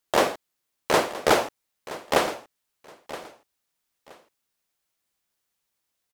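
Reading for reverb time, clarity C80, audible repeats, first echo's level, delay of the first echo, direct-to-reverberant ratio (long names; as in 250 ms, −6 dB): no reverb audible, no reverb audible, 2, −15.5 dB, 972 ms, no reverb audible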